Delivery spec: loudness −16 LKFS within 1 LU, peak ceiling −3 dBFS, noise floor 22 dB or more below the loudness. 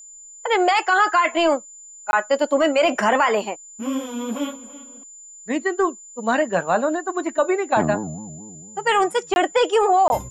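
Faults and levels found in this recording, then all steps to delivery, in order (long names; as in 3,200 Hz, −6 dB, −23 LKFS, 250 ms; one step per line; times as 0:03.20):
number of dropouts 3; longest dropout 21 ms; interfering tone 7,100 Hz; level of the tone −40 dBFS; integrated loudness −20.5 LKFS; sample peak −6.0 dBFS; target loudness −16.0 LKFS
→ repair the gap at 0:02.11/0:09.34/0:10.08, 21 ms
notch filter 7,100 Hz, Q 30
level +4.5 dB
brickwall limiter −3 dBFS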